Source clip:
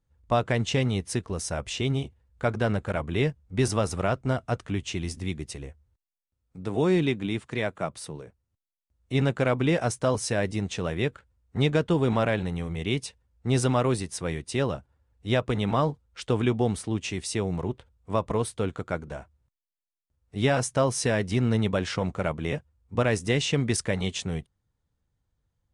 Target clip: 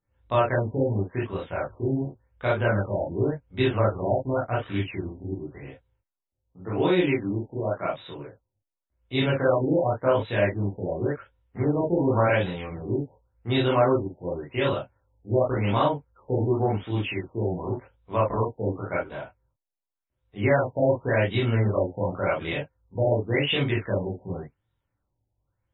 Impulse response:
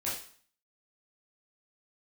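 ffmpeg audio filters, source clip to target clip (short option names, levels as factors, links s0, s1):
-filter_complex "[0:a]bass=f=250:g=-6,treble=f=4000:g=13[s0];[1:a]atrim=start_sample=2205,afade=t=out:st=0.13:d=0.01,atrim=end_sample=6174,atrim=end_sample=3528[s1];[s0][s1]afir=irnorm=-1:irlink=0,afftfilt=real='re*lt(b*sr/1024,900*pow(4000/900,0.5+0.5*sin(2*PI*0.9*pts/sr)))':imag='im*lt(b*sr/1024,900*pow(4000/900,0.5+0.5*sin(2*PI*0.9*pts/sr)))':win_size=1024:overlap=0.75"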